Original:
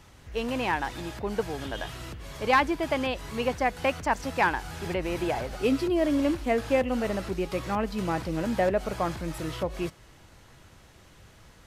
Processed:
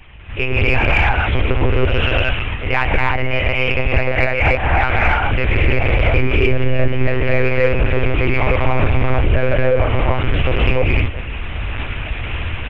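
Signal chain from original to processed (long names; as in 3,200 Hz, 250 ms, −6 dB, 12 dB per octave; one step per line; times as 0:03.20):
parametric band 2,700 Hz +11.5 dB 0.76 octaves
single-tap delay 338 ms −24 dB
reverb whose tail is shaped and stops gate 310 ms rising, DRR −5 dB
one-pitch LPC vocoder at 8 kHz 140 Hz
wrong playback speed 48 kHz file played as 44.1 kHz
automatic gain control gain up to 13 dB
in parallel at −7 dB: soft clipping −10.5 dBFS, distortion −12 dB
on the sum: low shelf with overshoot 120 Hz +8.5 dB, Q 1.5
downward compressor 3 to 1, threshold −13 dBFS, peak gain reduction 8.5 dB
highs frequency-modulated by the lows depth 0.18 ms
level +2 dB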